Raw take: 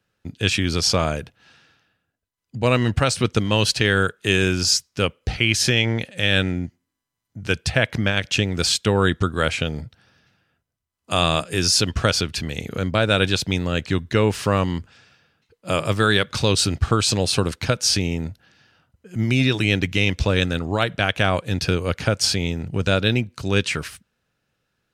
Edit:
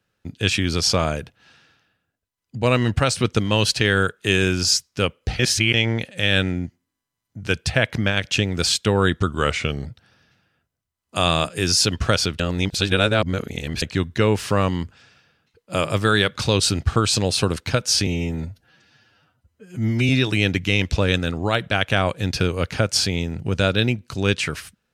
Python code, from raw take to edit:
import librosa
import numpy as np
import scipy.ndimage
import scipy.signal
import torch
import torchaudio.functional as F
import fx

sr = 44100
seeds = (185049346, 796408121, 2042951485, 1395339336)

y = fx.edit(x, sr, fx.reverse_span(start_s=5.39, length_s=0.35),
    fx.speed_span(start_s=9.27, length_s=0.54, speed=0.92),
    fx.reverse_span(start_s=12.35, length_s=1.42),
    fx.stretch_span(start_s=18.02, length_s=1.35, factor=1.5), tone=tone)